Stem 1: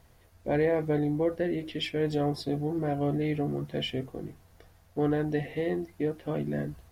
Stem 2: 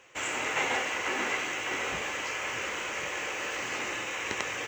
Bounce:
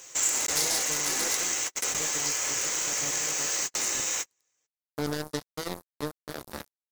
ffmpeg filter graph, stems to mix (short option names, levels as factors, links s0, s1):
-filter_complex "[0:a]acrusher=bits=3:mix=0:aa=0.5,volume=0.891,afade=t=in:st=3.75:d=0.37:silence=0.334965,asplit=2[s0][s1];[1:a]aeval=exprs='0.0562*(abs(mod(val(0)/0.0562+3,4)-2)-1)':c=same,volume=1.19[s2];[s1]apad=whole_len=206093[s3];[s2][s3]sidechaingate=range=0.00251:threshold=0.00112:ratio=16:detection=peak[s4];[s0][s4]amix=inputs=2:normalize=0,aexciter=amount=7.2:drive=6.4:freq=4000,acompressor=threshold=0.0224:ratio=1.5"